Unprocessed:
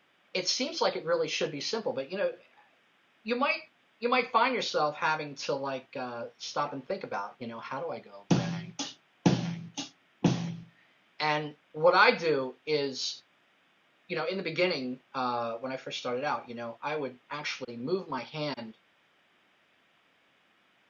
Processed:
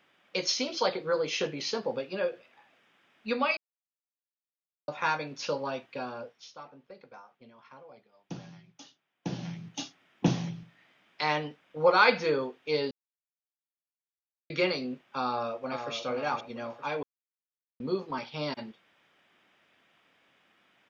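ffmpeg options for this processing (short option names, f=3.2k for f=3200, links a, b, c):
-filter_complex "[0:a]asplit=2[a][b];[b]afade=t=in:st=15.25:d=0.01,afade=t=out:st=15.94:d=0.01,aecho=0:1:460|920|1380|1840|2300:0.446684|0.178673|0.0714694|0.0285877|0.0114351[c];[a][c]amix=inputs=2:normalize=0,asplit=9[d][e][f][g][h][i][j][k][l];[d]atrim=end=3.57,asetpts=PTS-STARTPTS,afade=t=out:st=3.566:d=0.004:c=hsin[m];[e]atrim=start=3.57:end=4.88,asetpts=PTS-STARTPTS,volume=0[n];[f]atrim=start=4.88:end=6.53,asetpts=PTS-STARTPTS,afade=t=in:d=0.004:c=hsin,afade=t=out:st=1.19:d=0.46:silence=0.16788[o];[g]atrim=start=6.53:end=9.22,asetpts=PTS-STARTPTS,volume=-15.5dB[p];[h]atrim=start=9.22:end=12.91,asetpts=PTS-STARTPTS,afade=t=in:d=0.46:silence=0.16788,afade=t=out:st=3.686:d=0.004:c=hsin[q];[i]atrim=start=12.91:end=14.5,asetpts=PTS-STARTPTS,volume=0[r];[j]atrim=start=14.5:end=17.03,asetpts=PTS-STARTPTS,afade=t=in:d=0.004:c=hsin,afade=t=out:st=2.526:d=0.004:c=hsin[s];[k]atrim=start=17.03:end=17.8,asetpts=PTS-STARTPTS,volume=0[t];[l]atrim=start=17.8,asetpts=PTS-STARTPTS,afade=t=in:d=0.004:c=hsin[u];[m][n][o][p][q][r][s][t][u]concat=n=9:v=0:a=1"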